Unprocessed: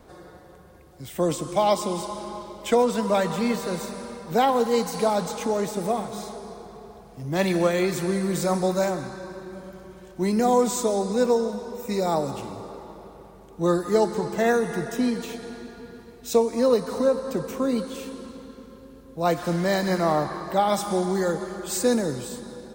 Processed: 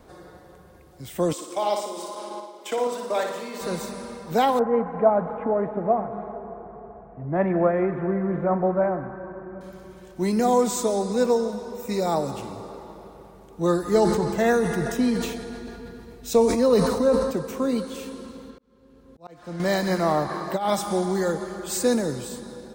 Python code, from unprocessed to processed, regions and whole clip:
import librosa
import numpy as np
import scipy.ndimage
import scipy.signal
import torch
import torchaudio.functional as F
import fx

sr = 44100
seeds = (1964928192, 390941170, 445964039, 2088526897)

y = fx.chain(x, sr, fx.highpass(hz=280.0, slope=24),
    fx.level_steps(step_db=12),
    fx.room_flutter(wall_m=9.9, rt60_s=0.66), at=(1.33, 3.61))
y = fx.chain(y, sr, fx.cheby2_lowpass(hz=4400.0, order=4, stop_db=50),
    fx.peak_eq(hz=670.0, db=7.0, octaves=0.25), at=(4.59, 9.61))
y = fx.chain(y, sr, fx.low_shelf(hz=98.0, db=10.0),
    fx.sustainer(db_per_s=48.0), at=(13.82, 17.31))
y = fx.chain(y, sr, fx.high_shelf(hz=9200.0, db=-11.5),
    fx.auto_swell(attack_ms=754.0), at=(18.5, 19.6))
y = fx.chain(y, sr, fx.highpass(hz=99.0, slope=12),
    fx.over_compress(threshold_db=-23.0, ratio=-0.5), at=(20.29, 20.7))